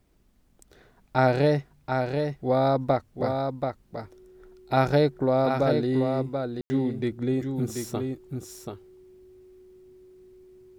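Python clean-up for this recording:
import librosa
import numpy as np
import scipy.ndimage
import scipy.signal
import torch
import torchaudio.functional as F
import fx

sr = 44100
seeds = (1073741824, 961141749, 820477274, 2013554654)

y = fx.notch(x, sr, hz=370.0, q=30.0)
y = fx.fix_ambience(y, sr, seeds[0], print_start_s=0.02, print_end_s=0.52, start_s=6.61, end_s=6.7)
y = fx.fix_echo_inverse(y, sr, delay_ms=733, level_db=-5.5)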